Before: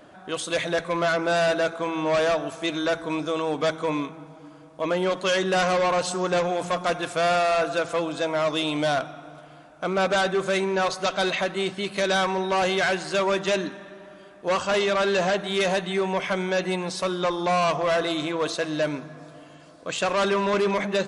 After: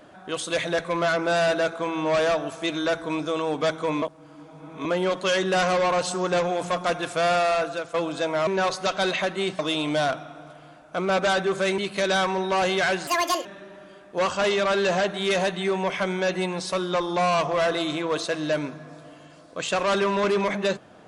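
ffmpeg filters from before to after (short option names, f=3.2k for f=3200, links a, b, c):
-filter_complex "[0:a]asplit=9[a][b][c][d][e][f][g][h][i];[a]atrim=end=4.022[j];[b]atrim=start=4.018:end=4.852,asetpts=PTS-STARTPTS,areverse[k];[c]atrim=start=4.848:end=7.94,asetpts=PTS-STARTPTS,afade=t=out:st=2.642:d=0.45:silence=0.298538[l];[d]atrim=start=7.94:end=8.472,asetpts=PTS-STARTPTS,afade=t=in:d=0.004:c=hsin:silence=0.298538[m];[e]atrim=start=10.658:end=11.782[n];[f]atrim=start=8.468:end=10.662[o];[g]atrim=start=11.778:end=13.074[p];[h]atrim=start=13.07:end=13.75,asetpts=PTS-STARTPTS,asetrate=78498,aresample=44100,atrim=end_sample=16847,asetpts=PTS-STARTPTS[q];[i]atrim=start=13.746[r];[j][k]acrossfade=d=0.004:c1=hsin:c2=hsin[s];[l][m]concat=n=2:v=0:a=1[t];[s][t]acrossfade=d=0.004:c1=hsin:c2=hsin[u];[u][n]acrossfade=d=0.004:c1=hsin:c2=hsin[v];[v][o]acrossfade=d=0.004:c1=hsin:c2=hsin[w];[w][p]acrossfade=d=0.004:c1=hsin:c2=hsin[x];[x][q]acrossfade=d=0.004:c1=hsin:c2=hsin[y];[y][r]acrossfade=d=0.004:c1=hsin:c2=hsin"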